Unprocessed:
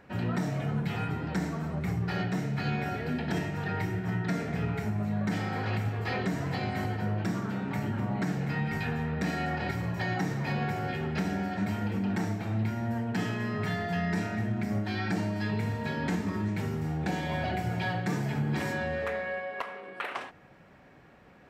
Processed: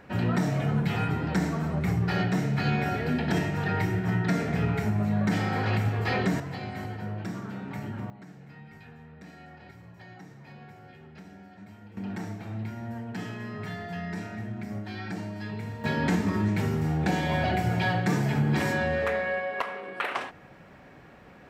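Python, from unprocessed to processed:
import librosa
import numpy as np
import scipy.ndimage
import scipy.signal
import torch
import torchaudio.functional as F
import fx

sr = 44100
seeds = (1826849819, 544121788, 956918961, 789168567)

y = fx.gain(x, sr, db=fx.steps((0.0, 4.5), (6.4, -4.0), (8.1, -17.0), (11.97, -5.0), (15.84, 5.0)))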